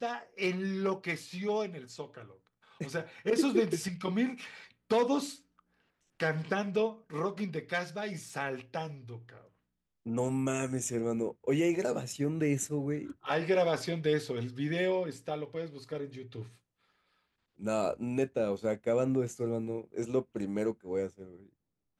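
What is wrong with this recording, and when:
8.29 gap 2.2 ms

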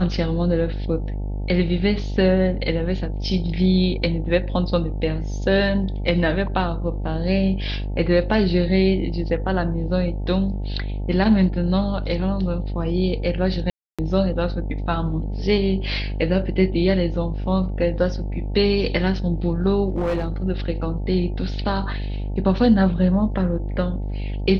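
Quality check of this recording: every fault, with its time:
buzz 50 Hz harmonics 18 -26 dBFS
13.7–13.99 gap 0.286 s
19.92–20.28 clipped -18.5 dBFS

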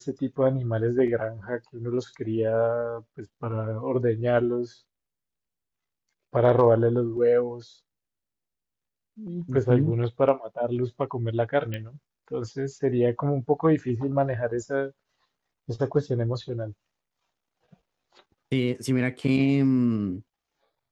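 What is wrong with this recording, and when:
11.74 pop -19 dBFS

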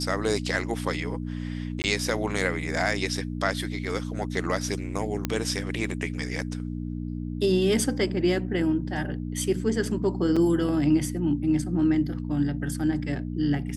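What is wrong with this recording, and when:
hum 60 Hz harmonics 5 -32 dBFS
1.82–1.84 gap 19 ms
5.25 pop -11 dBFS
10.36–10.37 gap 5.4 ms

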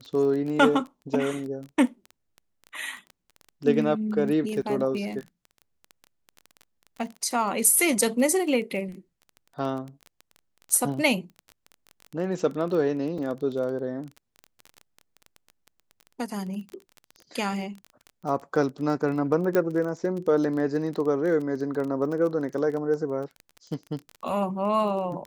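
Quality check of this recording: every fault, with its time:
crackle 19/s -32 dBFS
4.62–4.63 gap 6.7 ms
13.18 gap 3.3 ms
19.55 pop -12 dBFS

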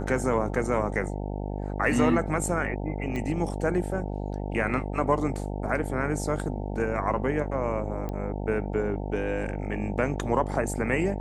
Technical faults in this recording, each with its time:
buzz 50 Hz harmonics 18 -32 dBFS
3.16 pop -20 dBFS
8.09 pop -21 dBFS

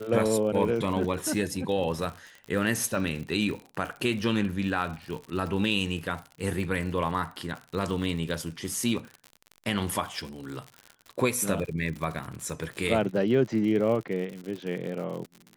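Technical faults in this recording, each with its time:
crackle 73/s -34 dBFS

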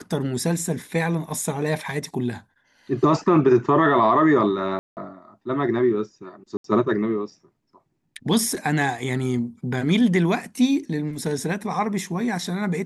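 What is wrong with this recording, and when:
4.79–4.97 gap 0.179 s
6.57–6.64 gap 73 ms

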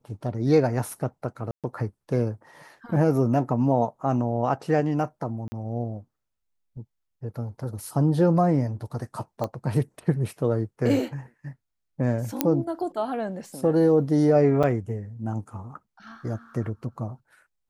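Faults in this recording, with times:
1.51–1.64 gap 0.127 s
5.48–5.52 gap 40 ms
9.44 pop -17 dBFS
12.41 pop -5 dBFS
14.63–14.64 gap 6.5 ms

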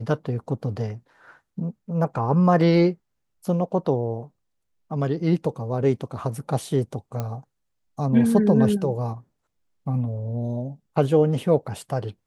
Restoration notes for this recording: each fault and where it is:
7.2 pop -15 dBFS

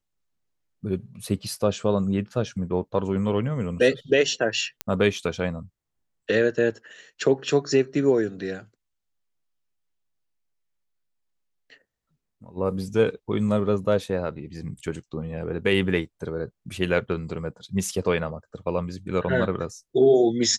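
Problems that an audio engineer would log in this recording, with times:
4.81 pop -10 dBFS

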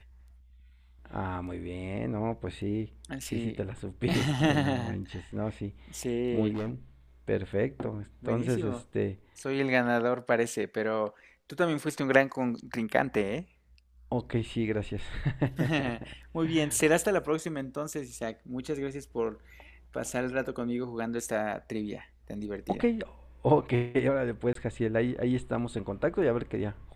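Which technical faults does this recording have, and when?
6.53–6.72 clipped -29.5 dBFS
24.53–24.55 gap 23 ms

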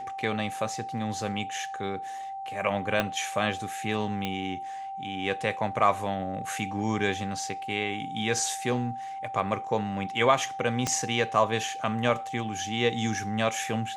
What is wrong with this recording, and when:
tone 780 Hz -34 dBFS
3 pop -11 dBFS
4.25 pop -16 dBFS
10.87 pop -13 dBFS

